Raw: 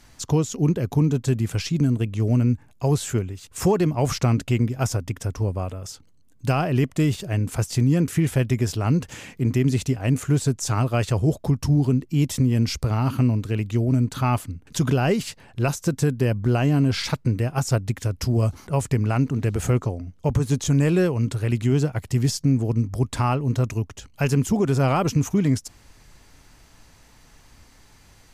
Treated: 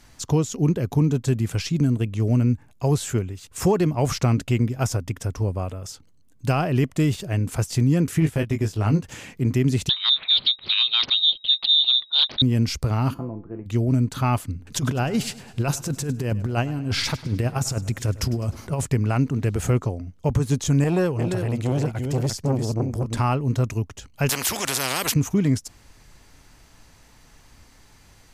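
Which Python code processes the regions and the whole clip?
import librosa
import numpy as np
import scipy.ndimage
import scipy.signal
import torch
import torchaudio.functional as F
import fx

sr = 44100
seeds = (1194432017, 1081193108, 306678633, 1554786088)

y = fx.chain(x, sr, fx.transient(attack_db=-3, sustain_db=-10),
    fx.doubler(ms=19.0, db=-6.0), at=(8.2, 9.04))
y = fx.chain(y, sr, fx.freq_invert(carrier_hz=3800),
    fx.doppler_dist(depth_ms=0.79), at=(9.89, 12.42))
y = fx.spec_clip(y, sr, under_db=12, at=(13.13, 13.65), fade=0.02)
y = fx.lowpass(y, sr, hz=1200.0, slope=24, at=(13.13, 13.65), fade=0.02)
y = fx.comb_fb(y, sr, f0_hz=170.0, decay_s=0.36, harmonics='all', damping=0.0, mix_pct=80, at=(13.13, 13.65), fade=0.02)
y = fx.chain(y, sr, fx.over_compress(threshold_db=-22.0, ratio=-0.5),
    fx.echo_feedback(ms=102, feedback_pct=55, wet_db=-18.0), at=(14.48, 18.85))
y = fx.chain(y, sr, fx.echo_single(ms=345, db=-6.5),
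    fx.transformer_sat(knee_hz=440.0), at=(20.84, 23.18))
y = fx.chain(y, sr, fx.highpass(hz=300.0, slope=6),
    fx.spectral_comp(ratio=4.0), at=(24.29, 25.14))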